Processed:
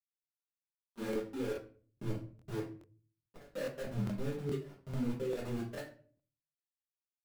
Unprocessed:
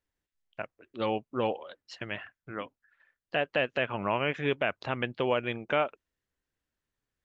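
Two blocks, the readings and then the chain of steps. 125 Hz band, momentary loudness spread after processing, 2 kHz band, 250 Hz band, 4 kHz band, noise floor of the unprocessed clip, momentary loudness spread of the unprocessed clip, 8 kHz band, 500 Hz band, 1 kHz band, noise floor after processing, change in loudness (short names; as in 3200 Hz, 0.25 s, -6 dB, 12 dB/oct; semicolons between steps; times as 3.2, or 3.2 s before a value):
0.0 dB, 10 LU, -18.0 dB, -2.0 dB, -15.5 dB, under -85 dBFS, 14 LU, n/a, -9.0 dB, -19.0 dB, under -85 dBFS, -8.5 dB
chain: spectral contrast raised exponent 2.5; HPF 57 Hz 12 dB/oct; in parallel at +2.5 dB: compressor 16:1, threshold -36 dBFS, peak gain reduction 13 dB; on the sum: Gaussian blur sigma 23 samples; sample gate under -38.5 dBFS; chorus 1.6 Hz, delay 20 ms, depth 5.9 ms; level quantiser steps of 22 dB; shoebox room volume 33 m³, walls mixed, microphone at 1.2 m; crackling interface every 0.42 s, samples 1024, repeat, from 0.69; gain -1.5 dB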